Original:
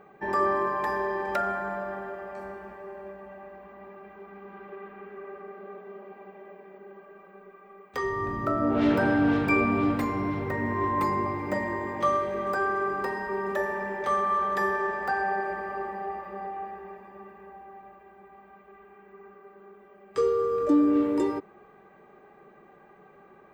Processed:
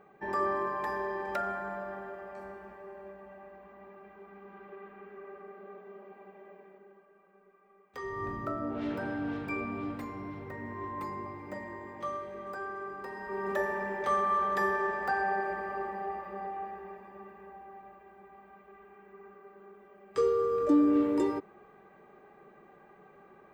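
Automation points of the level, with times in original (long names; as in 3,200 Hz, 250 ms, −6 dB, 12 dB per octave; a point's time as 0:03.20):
0:06.62 −5.5 dB
0:07.09 −13 dB
0:07.88 −13 dB
0:08.27 −5 dB
0:08.81 −12 dB
0:13.04 −12 dB
0:13.51 −2.5 dB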